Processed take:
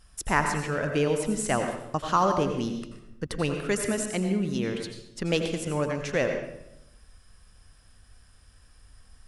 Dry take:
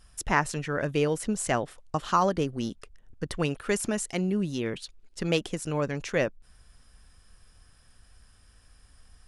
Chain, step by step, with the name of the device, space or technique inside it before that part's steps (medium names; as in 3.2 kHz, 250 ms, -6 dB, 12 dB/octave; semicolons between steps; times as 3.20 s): bathroom (reverberation RT60 0.85 s, pre-delay 78 ms, DRR 5 dB)